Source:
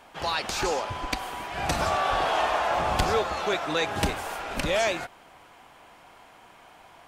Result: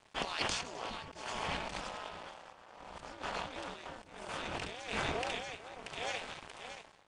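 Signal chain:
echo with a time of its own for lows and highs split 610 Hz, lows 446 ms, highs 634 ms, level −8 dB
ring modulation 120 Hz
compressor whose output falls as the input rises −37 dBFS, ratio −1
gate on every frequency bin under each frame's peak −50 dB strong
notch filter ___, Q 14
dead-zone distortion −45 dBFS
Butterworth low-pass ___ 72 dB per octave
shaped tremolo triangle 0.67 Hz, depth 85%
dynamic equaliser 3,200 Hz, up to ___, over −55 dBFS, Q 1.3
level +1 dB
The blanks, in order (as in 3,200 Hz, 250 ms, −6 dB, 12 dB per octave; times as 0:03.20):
3,900 Hz, 9,800 Hz, +5 dB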